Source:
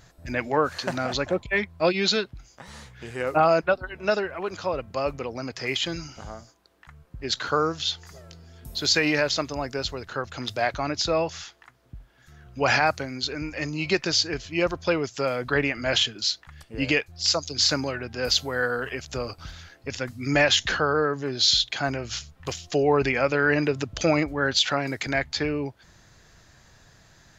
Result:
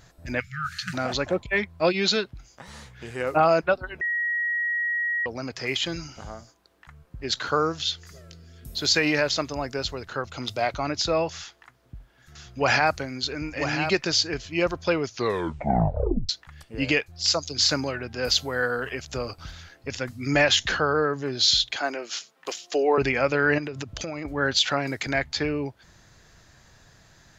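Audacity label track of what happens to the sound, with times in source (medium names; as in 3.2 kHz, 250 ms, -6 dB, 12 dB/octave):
0.400000	0.940000	spectral selection erased 210–1200 Hz
4.010000	5.260000	bleep 1.9 kHz -23 dBFS
7.830000	8.780000	peaking EQ 850 Hz -12 dB 0.55 oct
10.240000	10.850000	band-stop 1.7 kHz, Q 6.1
11.360000	13.960000	delay 991 ms -8 dB
15.060000	15.060000	tape stop 1.23 s
21.760000	22.980000	high-pass 300 Hz 24 dB/octave
23.580000	24.250000	compression 12:1, threshold -28 dBFS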